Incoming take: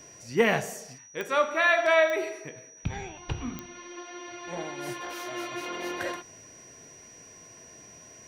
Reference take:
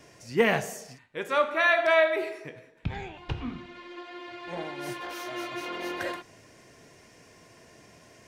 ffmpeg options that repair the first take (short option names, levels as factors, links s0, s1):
-af "adeclick=t=4,bandreject=f=5800:w=30"